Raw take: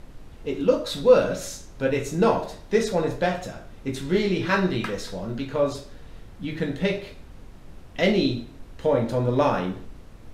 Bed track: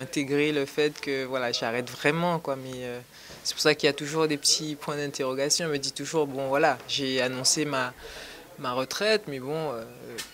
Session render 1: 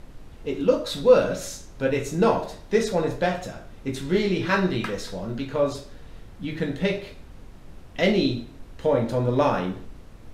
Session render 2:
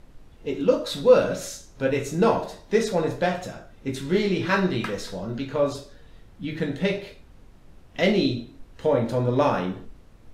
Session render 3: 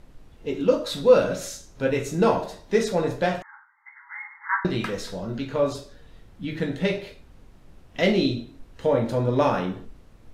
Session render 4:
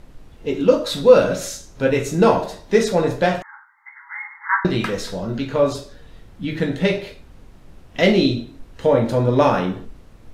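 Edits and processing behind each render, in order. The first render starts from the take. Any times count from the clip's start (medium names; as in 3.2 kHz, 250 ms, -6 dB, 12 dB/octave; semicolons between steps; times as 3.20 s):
no audible change
noise print and reduce 6 dB
3.42–4.65 s: brick-wall FIR band-pass 810–2200 Hz
trim +5.5 dB; peak limiter -1 dBFS, peak gain reduction 1 dB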